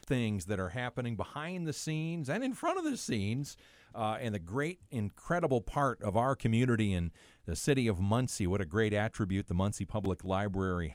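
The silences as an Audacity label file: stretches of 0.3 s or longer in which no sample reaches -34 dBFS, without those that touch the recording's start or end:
3.430000	3.980000	silence
7.080000	7.480000	silence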